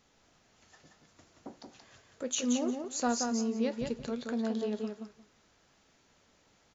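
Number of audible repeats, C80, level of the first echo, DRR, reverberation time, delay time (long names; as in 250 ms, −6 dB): 2, no reverb audible, −5.0 dB, no reverb audible, no reverb audible, 177 ms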